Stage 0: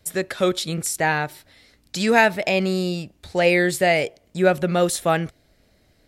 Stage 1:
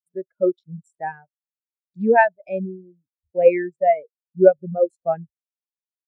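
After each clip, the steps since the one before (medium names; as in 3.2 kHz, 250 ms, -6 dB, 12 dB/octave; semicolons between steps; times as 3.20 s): local Wiener filter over 15 samples; reverb removal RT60 1.4 s; spectral contrast expander 2.5:1; trim +3 dB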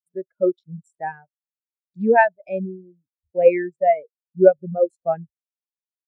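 no audible change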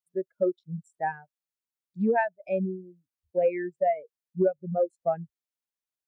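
compression 5:1, threshold -22 dBFS, peak gain reduction 14.5 dB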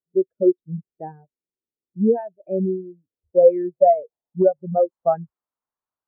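low-pass sweep 380 Hz -> 1.1 kHz, 2.77–5.13 s; trim +4 dB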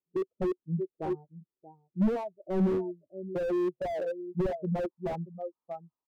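rippled Chebyshev low-pass 1.3 kHz, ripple 6 dB; delay 631 ms -17 dB; slew-rate limiter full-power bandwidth 14 Hz; trim +2 dB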